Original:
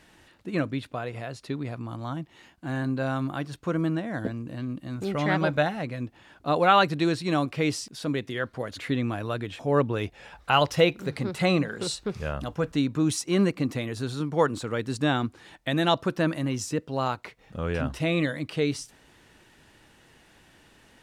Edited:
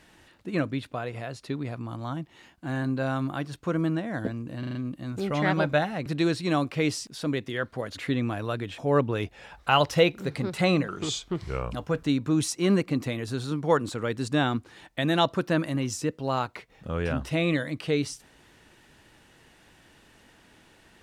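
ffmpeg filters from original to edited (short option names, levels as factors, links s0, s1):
-filter_complex "[0:a]asplit=8[s0][s1][s2][s3][s4][s5][s6][s7];[s0]atrim=end=4.632[s8];[s1]atrim=start=4.588:end=4.632[s9];[s2]atrim=start=4.588:end=4.632[s10];[s3]atrim=start=4.588:end=4.632[s11];[s4]atrim=start=4.588:end=5.902[s12];[s5]atrim=start=6.868:end=11.694[s13];[s6]atrim=start=11.69:end=12.43,asetpts=PTS-STARTPTS,asetrate=37926,aresample=44100[s14];[s7]atrim=start=12.426[s15];[s8][s9]acrossfade=d=0.004:c1=hsin:c2=hsin[s16];[s16][s10]acrossfade=d=0.004:c1=hsin:c2=hsin[s17];[s17][s11]acrossfade=d=0.004:c1=hsin:c2=hsin[s18];[s18][s12]acrossfade=d=0.004:c1=hsin:c2=hsin[s19];[s19][s13]acrossfade=d=0.004:c1=hsin:c2=hsin[s20];[s20][s14]acrossfade=d=0.004:c1=hsin:c2=hsin[s21];[s21][s15]acrossfade=d=0.004:c1=hsin:c2=hsin"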